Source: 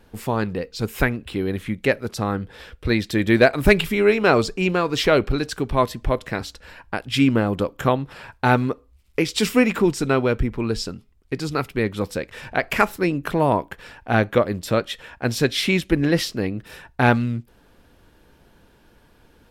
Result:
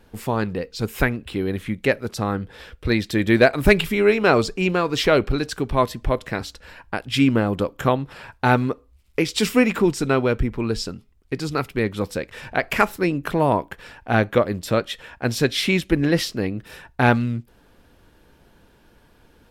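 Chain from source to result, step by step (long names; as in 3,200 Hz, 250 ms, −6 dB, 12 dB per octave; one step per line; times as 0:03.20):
AAC 192 kbit/s 44,100 Hz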